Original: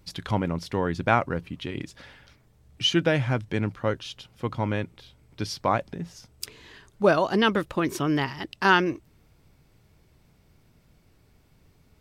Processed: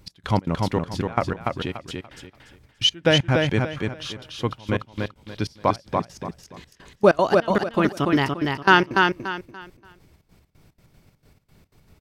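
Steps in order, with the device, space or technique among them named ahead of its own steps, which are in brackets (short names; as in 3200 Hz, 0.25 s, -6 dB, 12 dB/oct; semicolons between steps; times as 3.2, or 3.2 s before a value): trance gate with a delay (step gate "x..xx.x.xx.." 192 bpm -24 dB; feedback echo 0.289 s, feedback 28%, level -3.5 dB); gain +4.5 dB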